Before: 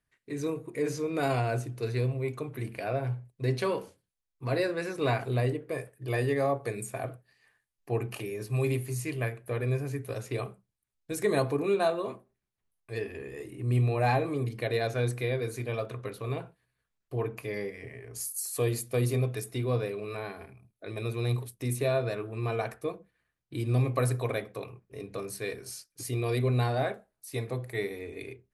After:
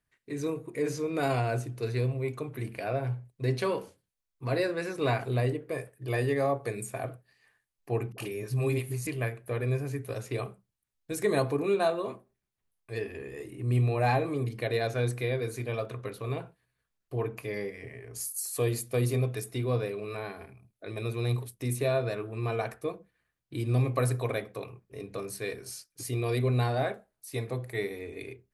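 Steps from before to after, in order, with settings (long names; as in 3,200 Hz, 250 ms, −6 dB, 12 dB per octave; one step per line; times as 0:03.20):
0:08.12–0:09.07: all-pass dispersion highs, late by 59 ms, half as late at 430 Hz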